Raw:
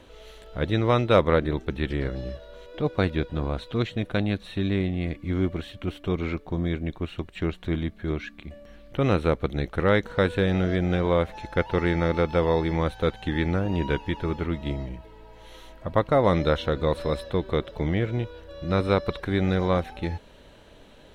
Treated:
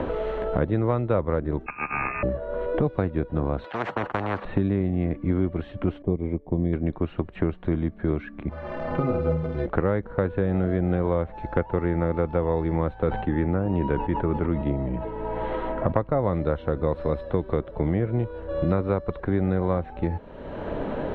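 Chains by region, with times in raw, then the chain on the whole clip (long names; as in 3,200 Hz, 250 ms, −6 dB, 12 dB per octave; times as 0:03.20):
0:01.66–0:02.23: samples sorted by size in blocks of 32 samples + voice inversion scrambler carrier 2,600 Hz
0:03.64–0:04.45: noise gate −36 dBFS, range −17 dB + high-pass filter 530 Hz + every bin compressed towards the loudest bin 10 to 1
0:06.02–0:06.73: moving average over 32 samples + expander for the loud parts, over −38 dBFS
0:08.49–0:09.66: linear delta modulator 32 kbit/s, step −32 dBFS + stiff-string resonator 75 Hz, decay 0.44 s, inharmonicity 0.03 + flutter between parallel walls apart 8.6 metres, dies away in 0.44 s
0:12.95–0:15.92: low-pass filter 4,100 Hz + level that may fall only so fast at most 70 dB per second
whole clip: low-pass filter 1,200 Hz 12 dB per octave; multiband upward and downward compressor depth 100%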